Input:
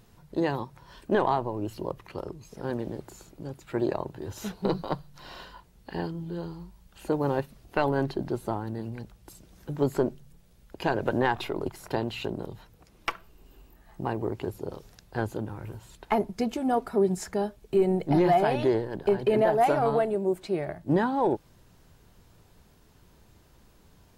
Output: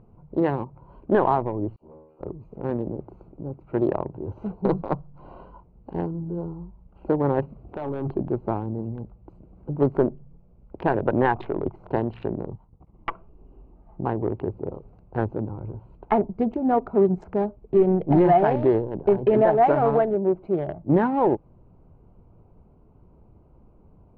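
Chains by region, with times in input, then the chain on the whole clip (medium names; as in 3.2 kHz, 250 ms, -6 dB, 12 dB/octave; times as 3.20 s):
1.76–2.21 s: feedback comb 78 Hz, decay 0.76 s, mix 100% + phase dispersion lows, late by 49 ms, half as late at 620 Hz + valve stage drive 46 dB, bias 0.45
7.42–8.10 s: high-pass 42 Hz + compressor with a negative ratio -30 dBFS + hard clipper -28.5 dBFS
12.51–13.11 s: comb 1 ms, depth 39% + transient shaper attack -2 dB, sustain -11 dB + distance through air 120 m
whole clip: local Wiener filter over 25 samples; low-pass 1.7 kHz 12 dB/octave; trim +5 dB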